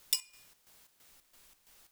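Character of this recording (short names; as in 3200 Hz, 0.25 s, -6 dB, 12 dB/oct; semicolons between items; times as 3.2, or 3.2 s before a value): a quantiser's noise floor 10-bit, dither triangular; chopped level 3 Hz, depth 65%, duty 60%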